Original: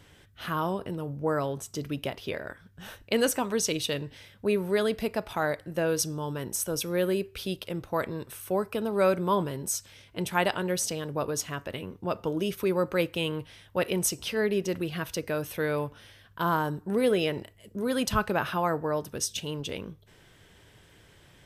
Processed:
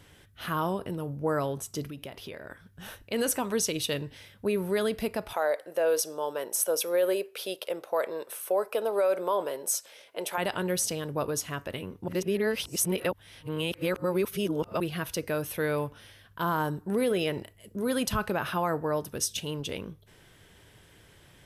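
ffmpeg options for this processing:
-filter_complex "[0:a]asettb=1/sr,asplit=3[s0][s1][s2];[s0]atrim=end=1.894[s3];[s1]atrim=start=1.89:end=2.51,asetpts=PTS-STARTPTS,afade=t=in:d=0.004:c=qsin,afade=t=out:st=0.616:d=0.004:c=qsin,acompressor=threshold=0.0112:ratio=3:attack=3.2:release=140:knee=1:detection=peak[s4];[s2]atrim=start=2.506[s5];[s3][s4]acrossfade=d=0.004:c1=hsin:c2=qsin[s6];[s6][s5]acrossfade=d=0.004:c1=qsin:c2=hsin,asettb=1/sr,asplit=3[s7][s8][s9];[s7]atrim=end=5.334[s10];[s8]atrim=start=5.33:end=10.38,asetpts=PTS-STARTPTS,afade=t=in:d=0.004:c=qsin,afade=t=out:st=5.046:d=0.004:c=qsin,highpass=f=540:t=q:w=2.4[s11];[s9]atrim=start=10.376[s12];[s10][s11]acrossfade=d=0.004:c1=hsin:c2=qsin[s13];[s13][s12]acrossfade=d=0.004:c1=qsin:c2=hsin,asplit=3[s14][s15][s16];[s14]atrim=end=12.082[s17];[s15]atrim=start=12.078:end=14.802,asetpts=PTS-STARTPTS,areverse[s18];[s16]atrim=start=14.798[s19];[s17][s18]acrossfade=d=0.004:c1=hsin:c2=hsin[s20];[s20][s19]acrossfade=d=0.004:c1=hsin:c2=hsin,alimiter=limit=0.126:level=0:latency=1:release=59,equalizer=f=11000:t=o:w=0.29:g=8"

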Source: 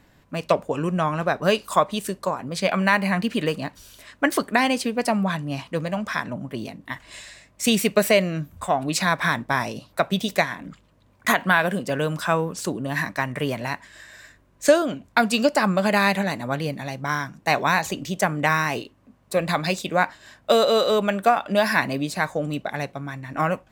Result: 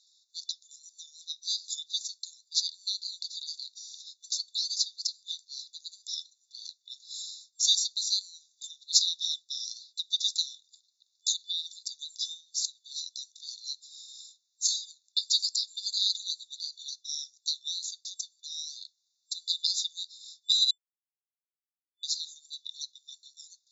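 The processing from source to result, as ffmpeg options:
-filter_complex "[0:a]asplit=3[s0][s1][s2];[s0]afade=t=out:st=17.49:d=0.02[s3];[s1]highshelf=f=3100:g=-8,afade=t=in:st=17.49:d=0.02,afade=t=out:st=18.81:d=0.02[s4];[s2]afade=t=in:st=18.81:d=0.02[s5];[s3][s4][s5]amix=inputs=3:normalize=0,asplit=3[s6][s7][s8];[s6]atrim=end=20.71,asetpts=PTS-STARTPTS,afade=t=out:st=20.706:d=0.004:c=hsin[s9];[s7]atrim=start=20.71:end=22.03,asetpts=PTS-STARTPTS,volume=0[s10];[s8]atrim=start=22.03,asetpts=PTS-STARTPTS,afade=t=in:d=0.004:c=hsin[s11];[s9][s10][s11]concat=n=3:v=0:a=1,afftfilt=real='re*between(b*sr/4096,3500,7400)':imag='im*between(b*sr/4096,3500,7400)':win_size=4096:overlap=0.75,acontrast=58"

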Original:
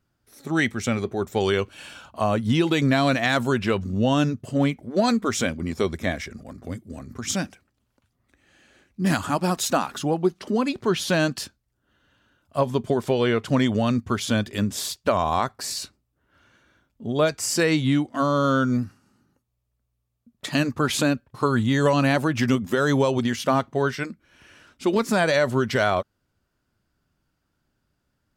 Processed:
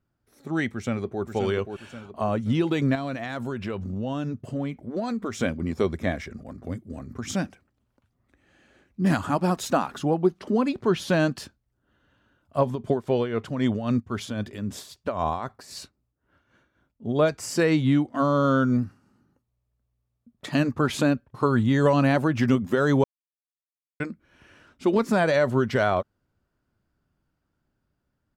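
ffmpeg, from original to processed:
-filter_complex "[0:a]asplit=2[s0][s1];[s1]afade=t=in:st=0.72:d=0.01,afade=t=out:st=1.23:d=0.01,aecho=0:1:530|1060|1590|2120|2650:0.446684|0.201008|0.0904534|0.040704|0.0183168[s2];[s0][s2]amix=inputs=2:normalize=0,asettb=1/sr,asplit=3[s3][s4][s5];[s3]atrim=end=2.954[s6];[s4]atrim=start=2.95:end=5.41,asetpts=PTS-STARTPTS,afade=t=in:d=0.004:c=qsin,afade=t=out:st=2.456:d=0.004:c=qsin,acompressor=threshold=0.0501:ratio=3:attack=3.2:release=140:knee=1:detection=peak[s7];[s5]atrim=start=5.406[s8];[s6][s7]acrossfade=d=0.004:c1=hsin:c2=qsin[s9];[s9][s8]acrossfade=d=0.004:c1=qsin:c2=hsin,asplit=3[s10][s11][s12];[s10]afade=t=out:st=12.74:d=0.02[s13];[s11]tremolo=f=3.8:d=0.71,afade=t=in:st=12.74:d=0.02,afade=t=out:st=17.13:d=0.02[s14];[s12]afade=t=in:st=17.13:d=0.02[s15];[s13][s14][s15]amix=inputs=3:normalize=0,asplit=3[s16][s17][s18];[s16]atrim=end=23.04,asetpts=PTS-STARTPTS,afade=t=out:st=23.036:d=0.004:c=hsin[s19];[s17]atrim=start=23.04:end=24,asetpts=PTS-STARTPTS,volume=0[s20];[s18]atrim=start=24,asetpts=PTS-STARTPTS,afade=t=in:d=0.004:c=hsin[s21];[s19][s20][s21]concat=n=3:v=0:a=1,highshelf=f=2300:g=-9.5,dynaudnorm=f=380:g=21:m=1.5,volume=0.708"

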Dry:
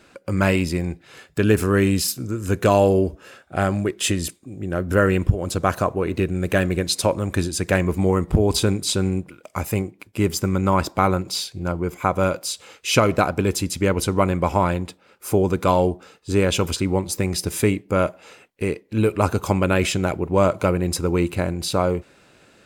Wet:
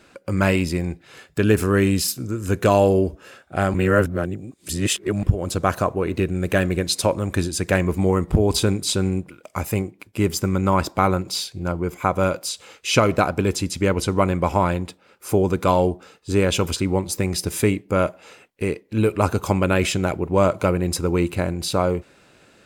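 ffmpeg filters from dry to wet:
-filter_complex "[0:a]asettb=1/sr,asplit=3[s0][s1][s2];[s0]atrim=end=12.494[s3];[s1]atrim=start=12.49:end=15.29,asetpts=PTS-STARTPTS,afade=t=in:d=0.004:c=qsin,afade=t=out:st=2.796:d=0.004:c=qsin,acrossover=split=9300[s4][s5];[s5]acompressor=threshold=0.00794:ratio=4:attack=1:release=60[s6];[s4][s6]amix=inputs=2:normalize=0[s7];[s2]atrim=start=15.286[s8];[s3][s7]acrossfade=d=0.004:c1=hsin:c2=qsin[s9];[s9][s8]acrossfade=d=0.004:c1=qsin:c2=hsin,asplit=3[s10][s11][s12];[s10]atrim=end=3.742[s13];[s11]atrim=start=3.738:end=5.232,asetpts=PTS-STARTPTS,areverse[s14];[s12]atrim=start=5.228[s15];[s13][s14]acrossfade=d=0.004:c1=hsin:c2=hsin[s16];[s16][s15]acrossfade=d=0.004:c1=hsin:c2=hsin"

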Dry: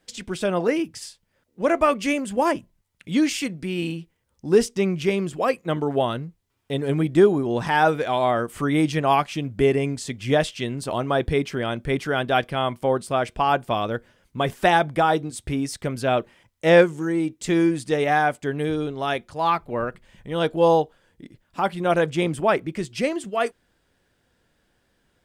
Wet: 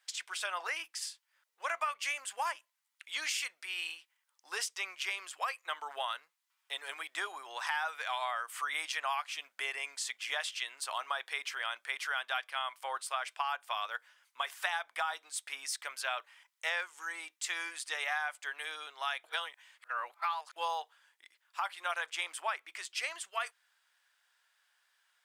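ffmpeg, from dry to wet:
-filter_complex "[0:a]asplit=3[s0][s1][s2];[s0]atrim=end=19.242[s3];[s1]atrim=start=19.238:end=20.562,asetpts=PTS-STARTPTS,areverse[s4];[s2]atrim=start=20.558[s5];[s3][s4]acrossfade=d=0.004:c1=hsin:c2=hsin[s6];[s6][s5]acrossfade=d=0.004:c1=hsin:c2=hsin,highpass=f=1000:w=0.5412,highpass=f=1000:w=1.3066,acompressor=threshold=0.0355:ratio=6,volume=0.794"

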